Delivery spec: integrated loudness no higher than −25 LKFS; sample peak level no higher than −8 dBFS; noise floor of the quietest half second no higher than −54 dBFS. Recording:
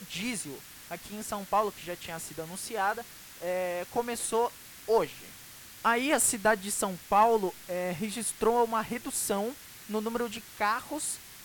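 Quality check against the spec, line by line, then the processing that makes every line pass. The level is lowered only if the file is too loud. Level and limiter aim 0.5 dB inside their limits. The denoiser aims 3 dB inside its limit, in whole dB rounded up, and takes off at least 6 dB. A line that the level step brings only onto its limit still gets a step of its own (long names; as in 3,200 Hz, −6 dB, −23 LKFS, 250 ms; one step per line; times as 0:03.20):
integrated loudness −30.0 LKFS: in spec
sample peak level −12.0 dBFS: in spec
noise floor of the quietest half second −49 dBFS: out of spec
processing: broadband denoise 8 dB, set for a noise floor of −49 dBFS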